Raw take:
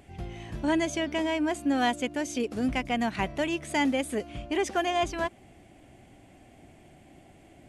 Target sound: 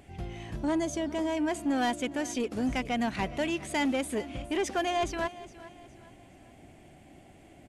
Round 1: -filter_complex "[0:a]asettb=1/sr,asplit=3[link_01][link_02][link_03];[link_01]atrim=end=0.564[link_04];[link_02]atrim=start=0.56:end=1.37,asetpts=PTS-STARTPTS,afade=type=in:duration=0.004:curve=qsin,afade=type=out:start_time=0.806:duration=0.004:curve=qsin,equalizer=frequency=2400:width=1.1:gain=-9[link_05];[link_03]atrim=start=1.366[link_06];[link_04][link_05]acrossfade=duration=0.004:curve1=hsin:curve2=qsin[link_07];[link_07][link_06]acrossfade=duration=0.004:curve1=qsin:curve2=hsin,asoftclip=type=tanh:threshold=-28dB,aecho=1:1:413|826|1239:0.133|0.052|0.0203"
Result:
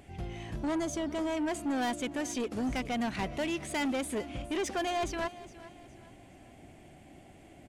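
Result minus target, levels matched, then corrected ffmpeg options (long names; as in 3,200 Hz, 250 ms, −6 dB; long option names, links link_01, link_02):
soft clipping: distortion +6 dB
-filter_complex "[0:a]asettb=1/sr,asplit=3[link_01][link_02][link_03];[link_01]atrim=end=0.564[link_04];[link_02]atrim=start=0.56:end=1.37,asetpts=PTS-STARTPTS,afade=type=in:duration=0.004:curve=qsin,afade=type=out:start_time=0.806:duration=0.004:curve=qsin,equalizer=frequency=2400:width=1.1:gain=-9[link_05];[link_03]atrim=start=1.366[link_06];[link_04][link_05]acrossfade=duration=0.004:curve1=hsin:curve2=qsin[link_07];[link_07][link_06]acrossfade=duration=0.004:curve1=qsin:curve2=hsin,asoftclip=type=tanh:threshold=-22dB,aecho=1:1:413|826|1239:0.133|0.052|0.0203"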